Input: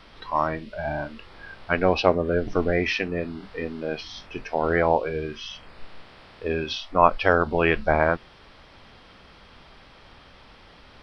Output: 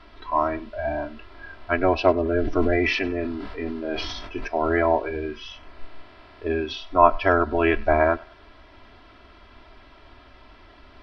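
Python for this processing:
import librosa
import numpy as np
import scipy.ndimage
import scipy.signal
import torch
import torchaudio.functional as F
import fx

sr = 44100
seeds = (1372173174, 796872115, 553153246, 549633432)

y = fx.lowpass(x, sr, hz=2400.0, slope=6)
y = y + 0.84 * np.pad(y, (int(3.0 * sr / 1000.0), 0))[:len(y)]
y = fx.echo_thinned(y, sr, ms=99, feedback_pct=45, hz=550.0, wet_db=-22)
y = fx.sustainer(y, sr, db_per_s=31.0, at=(2.2, 4.48))
y = y * 10.0 ** (-1.0 / 20.0)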